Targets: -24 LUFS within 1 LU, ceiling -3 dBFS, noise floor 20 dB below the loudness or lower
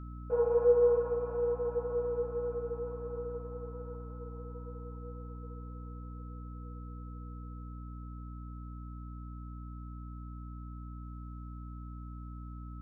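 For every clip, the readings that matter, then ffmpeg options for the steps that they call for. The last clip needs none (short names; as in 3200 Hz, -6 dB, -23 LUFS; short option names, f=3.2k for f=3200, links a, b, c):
hum 60 Hz; harmonics up to 300 Hz; hum level -41 dBFS; steady tone 1300 Hz; tone level -54 dBFS; loudness -36.5 LUFS; peak -15.5 dBFS; loudness target -24.0 LUFS
-> -af "bandreject=f=60:t=h:w=4,bandreject=f=120:t=h:w=4,bandreject=f=180:t=h:w=4,bandreject=f=240:t=h:w=4,bandreject=f=300:t=h:w=4"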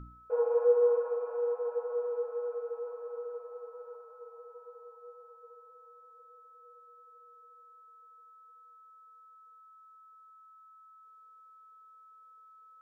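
hum none; steady tone 1300 Hz; tone level -54 dBFS
-> -af "bandreject=f=1.3k:w=30"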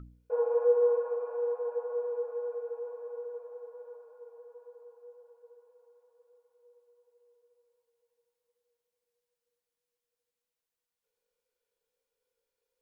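steady tone none; loudness -31.5 LUFS; peak -15.5 dBFS; loudness target -24.0 LUFS
-> -af "volume=7.5dB"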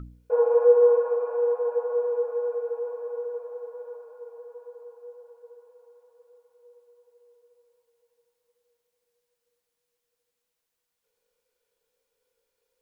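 loudness -24.0 LUFS; peak -8.0 dBFS; noise floor -82 dBFS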